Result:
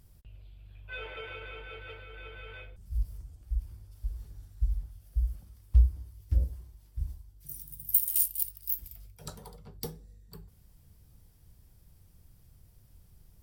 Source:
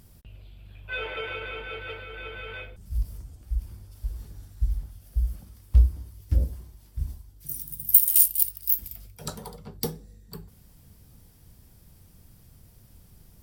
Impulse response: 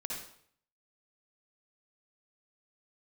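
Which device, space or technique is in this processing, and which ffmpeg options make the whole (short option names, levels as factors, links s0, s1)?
low shelf boost with a cut just above: -af "lowshelf=f=96:g=7,equalizer=f=230:t=o:w=0.61:g=-4,volume=0.376"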